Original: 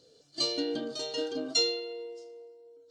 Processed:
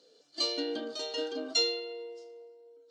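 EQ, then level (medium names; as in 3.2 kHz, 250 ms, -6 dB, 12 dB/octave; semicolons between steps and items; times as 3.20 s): high-pass 200 Hz 24 dB/octave; bass shelf 460 Hz -8 dB; treble shelf 6.4 kHz -11.5 dB; +2.5 dB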